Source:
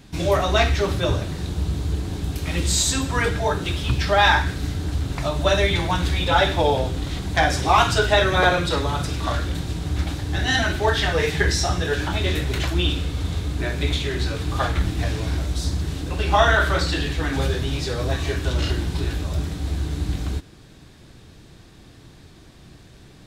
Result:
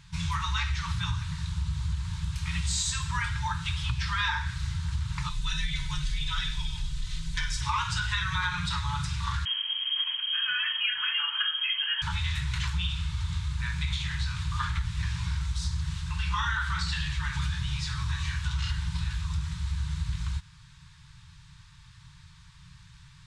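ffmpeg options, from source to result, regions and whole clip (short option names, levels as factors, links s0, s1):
-filter_complex "[0:a]asettb=1/sr,asplit=3[s0][s1][s2];[s0]atrim=end=5.294[s3];[s1]atrim=start=5.29:end=7.61,asetpts=PTS-STARTPTS,afade=t=in:d=0.004:c=qsin,afade=t=out:st=2.316:d=0.004:c=qsin,equalizer=f=940:t=o:w=2.2:g=-12.5,aecho=1:1:3.9:0.64,atrim=end_sample=102312,afreqshift=-30[s4];[s2]atrim=start=7.606[s5];[s3][s4]acrossfade=d=0.004:c1=hsin:c2=qsin[s6];[s6][s5]acrossfade=d=0.004:c1=qsin:c2=hsin,asettb=1/sr,asplit=3[s7][s8][s9];[s7]atrim=end=9.454[s10];[s8]atrim=start=9.45:end=12.02,asetpts=PTS-STARTPTS,afade=t=in:d=0.004:c=qsin,afade=t=out:st=2.566:d=0.004:c=qsin,lowpass=f=2800:t=q:w=0.5098,lowpass=f=2800:t=q:w=0.6013,lowpass=f=2800:t=q:w=0.9,lowpass=f=2800:t=q:w=2.563,afreqshift=-3300,highpass=f=820:p=1[s11];[s9]atrim=start=12.016[s12];[s10][s11]acrossfade=d=0.004:c1=hsin:c2=qsin[s13];[s13][s12]acrossfade=d=0.004:c1=qsin:c2=hsin,lowpass=f=9300:w=0.5412,lowpass=f=9300:w=1.3066,afftfilt=real='re*(1-between(b*sr/4096,180,860))':imag='im*(1-between(b*sr/4096,180,860))':win_size=4096:overlap=0.75,acompressor=threshold=0.0891:ratio=6,volume=0.631"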